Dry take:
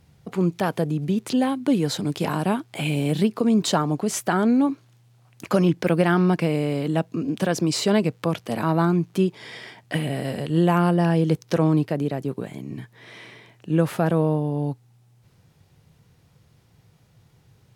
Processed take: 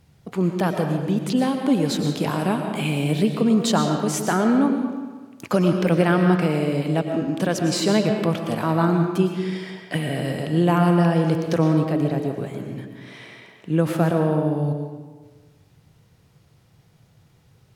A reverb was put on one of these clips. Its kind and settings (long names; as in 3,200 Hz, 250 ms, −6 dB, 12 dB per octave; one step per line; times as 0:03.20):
comb and all-pass reverb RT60 1.4 s, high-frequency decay 0.7×, pre-delay 75 ms, DRR 4 dB